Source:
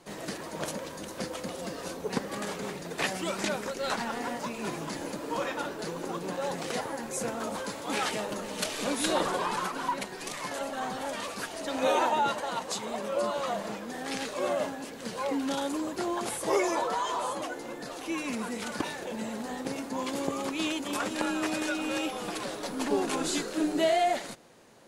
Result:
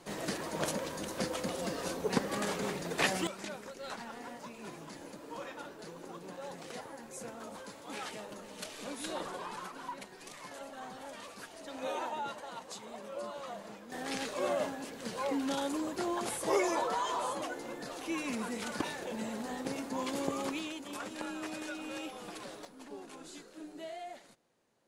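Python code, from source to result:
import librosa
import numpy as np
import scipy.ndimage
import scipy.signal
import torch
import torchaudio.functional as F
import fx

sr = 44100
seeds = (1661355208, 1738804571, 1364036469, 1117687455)

y = fx.gain(x, sr, db=fx.steps((0.0, 0.5), (3.27, -11.5), (13.92, -3.0), (20.59, -10.0), (22.65, -19.0)))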